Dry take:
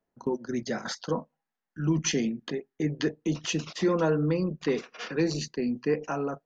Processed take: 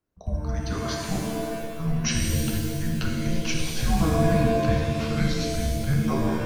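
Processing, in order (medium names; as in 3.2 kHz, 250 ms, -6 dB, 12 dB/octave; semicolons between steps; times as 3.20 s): frequency shift -310 Hz; pitch-shifted reverb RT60 1.6 s, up +7 st, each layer -2 dB, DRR 0.5 dB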